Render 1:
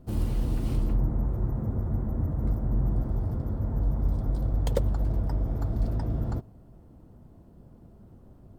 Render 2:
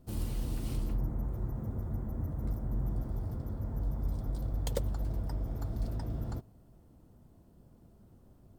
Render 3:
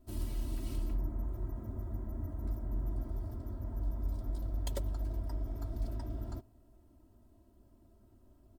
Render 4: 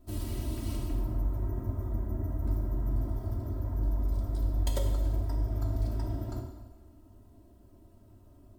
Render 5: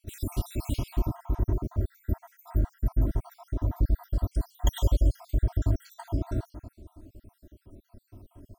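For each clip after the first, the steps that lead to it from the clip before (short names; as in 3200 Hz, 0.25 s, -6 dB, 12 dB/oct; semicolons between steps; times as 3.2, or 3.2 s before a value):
high shelf 2800 Hz +10 dB; gain -7.5 dB
comb 3.1 ms, depth 93%; gain -6 dB
plate-style reverb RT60 1.2 s, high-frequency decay 0.9×, DRR 1.5 dB; gain +4 dB
random spectral dropouts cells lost 65%; gain +8 dB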